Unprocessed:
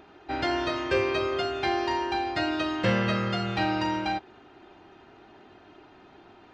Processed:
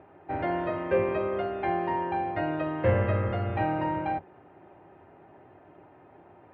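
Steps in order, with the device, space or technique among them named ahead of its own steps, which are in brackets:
sub-octave bass pedal (sub-octave generator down 1 octave, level 0 dB; loudspeaker in its box 87–2,100 Hz, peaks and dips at 94 Hz +7 dB, 140 Hz −4 dB, 200 Hz −6 dB, 560 Hz +8 dB, 870 Hz +3 dB, 1,400 Hz −5 dB)
level −2.5 dB

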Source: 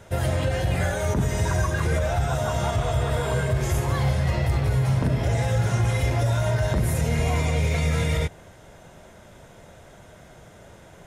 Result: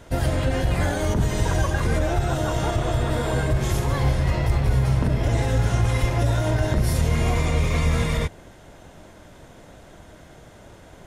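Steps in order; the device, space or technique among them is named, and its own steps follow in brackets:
octave pedal (pitch-shifted copies added −12 semitones −3 dB)

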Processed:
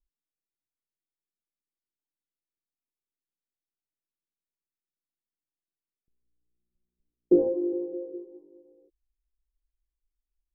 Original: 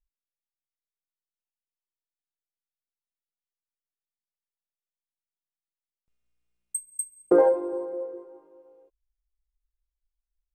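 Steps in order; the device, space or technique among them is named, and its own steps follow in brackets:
overdriven synthesiser ladder filter (soft clipping −14.5 dBFS, distortion −15 dB; transistor ladder low-pass 410 Hz, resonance 45%)
level +8.5 dB

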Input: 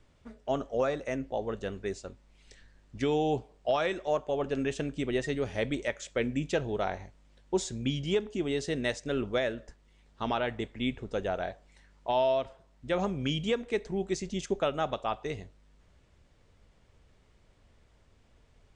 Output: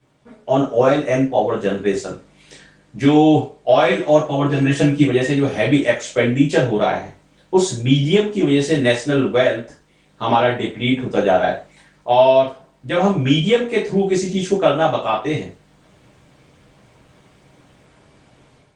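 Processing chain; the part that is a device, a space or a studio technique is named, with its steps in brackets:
0:03.87–0:05.06: comb filter 6.1 ms, depth 95%
far-field microphone of a smart speaker (convolution reverb RT60 0.30 s, pre-delay 9 ms, DRR −7 dB; high-pass filter 130 Hz 12 dB per octave; automatic gain control gain up to 10 dB; Opus 24 kbit/s 48,000 Hz)

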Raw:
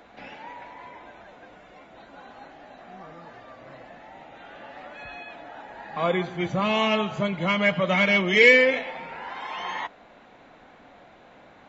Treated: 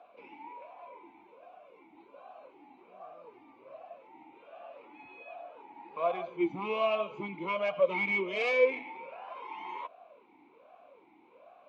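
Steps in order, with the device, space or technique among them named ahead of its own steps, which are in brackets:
talk box (tube saturation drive 15 dB, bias 0.45; formant filter swept between two vowels a-u 1.3 Hz)
level +4.5 dB

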